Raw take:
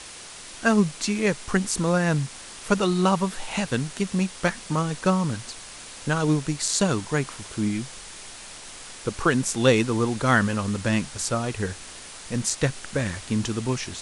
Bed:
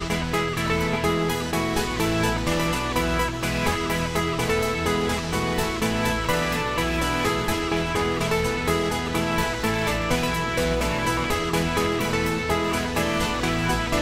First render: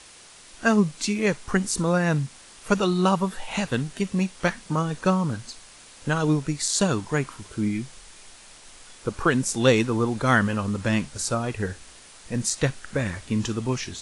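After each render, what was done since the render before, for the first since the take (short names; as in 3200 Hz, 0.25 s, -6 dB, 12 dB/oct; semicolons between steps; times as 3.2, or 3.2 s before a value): noise print and reduce 7 dB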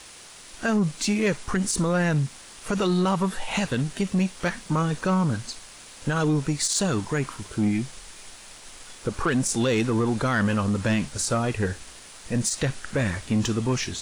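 limiter -15.5 dBFS, peak gain reduction 10 dB; sample leveller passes 1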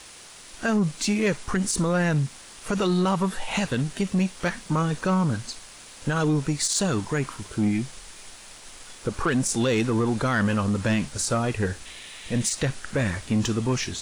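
11.85–12.53 painted sound noise 1700–4100 Hz -44 dBFS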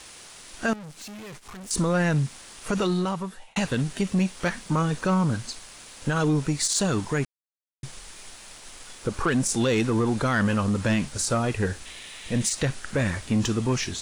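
0.73–1.71 tube stage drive 39 dB, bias 0.55; 2.76–3.56 fade out linear; 7.25–7.83 mute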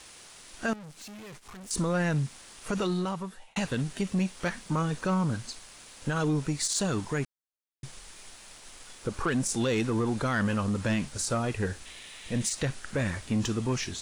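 gain -4.5 dB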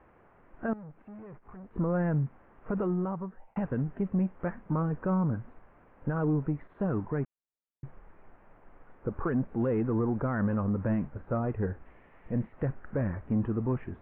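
Gaussian blur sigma 6.2 samples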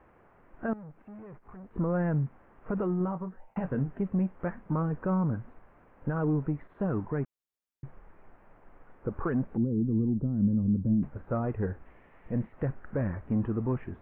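2.98–3.87 doubler 22 ms -9 dB; 9.57–11.03 synth low-pass 230 Hz, resonance Q 1.5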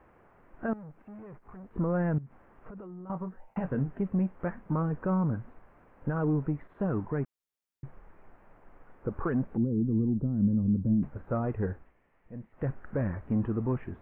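2.18–3.1 compressor 10:1, threshold -41 dBFS; 11.72–12.68 dip -12 dB, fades 0.20 s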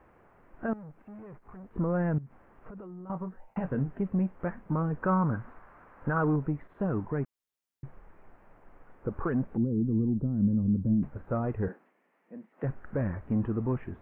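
5.03–6.36 bell 1300 Hz +9.5 dB 1.5 oct; 11.68–12.64 steep high-pass 190 Hz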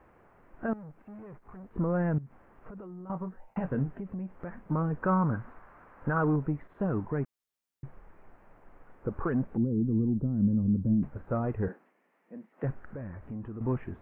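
3.98–4.71 compressor, threshold -34 dBFS; 12.83–13.61 compressor 2.5:1, threshold -41 dBFS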